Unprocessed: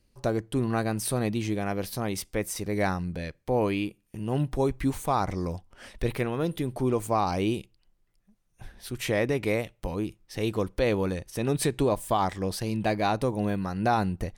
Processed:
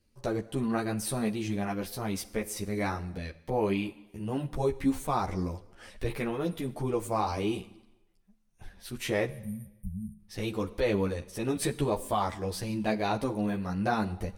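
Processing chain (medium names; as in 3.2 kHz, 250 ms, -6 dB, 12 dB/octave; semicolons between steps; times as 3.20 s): spectral selection erased 9.26–10.19 s, 220–8700 Hz; Schroeder reverb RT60 0.98 s, combs from 33 ms, DRR 16.5 dB; three-phase chorus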